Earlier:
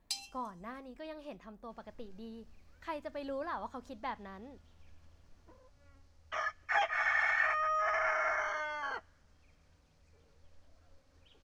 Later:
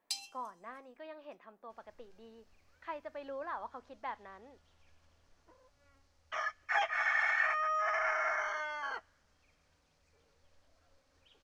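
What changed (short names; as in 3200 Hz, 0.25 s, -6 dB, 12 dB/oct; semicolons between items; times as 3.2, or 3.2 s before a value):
speech: add BPF 290–2600 Hz; master: add low shelf 310 Hz -9.5 dB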